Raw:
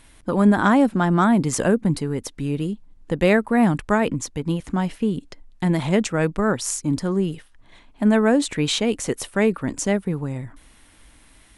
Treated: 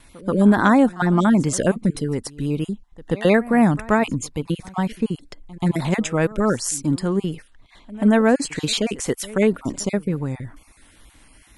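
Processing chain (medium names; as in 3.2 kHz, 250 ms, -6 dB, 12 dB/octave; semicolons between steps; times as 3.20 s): random holes in the spectrogram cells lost 20%; vibrato 2.1 Hz 39 cents; reverse echo 132 ms -20 dB; trim +1.5 dB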